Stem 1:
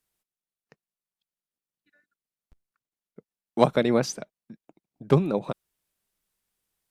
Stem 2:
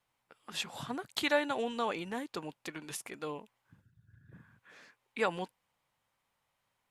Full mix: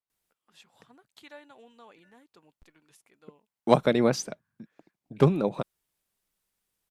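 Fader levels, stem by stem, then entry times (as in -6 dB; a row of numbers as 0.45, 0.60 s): -0.5, -19.0 dB; 0.10, 0.00 s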